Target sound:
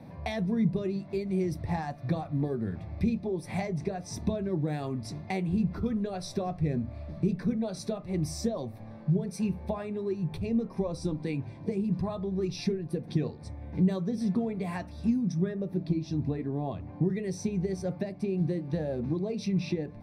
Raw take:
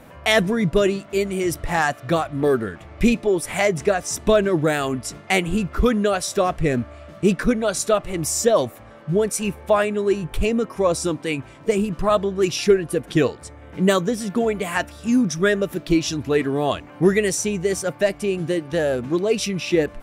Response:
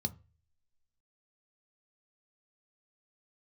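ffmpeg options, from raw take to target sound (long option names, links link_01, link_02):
-filter_complex "[0:a]asetnsamples=nb_out_samples=441:pad=0,asendcmd='15.32 lowpass f 1300;17.1 lowpass f 2700',lowpass=frequency=3700:poles=1,acompressor=threshold=-26dB:ratio=6[link_01];[1:a]atrim=start_sample=2205[link_02];[link_01][link_02]afir=irnorm=-1:irlink=0,volume=-8.5dB"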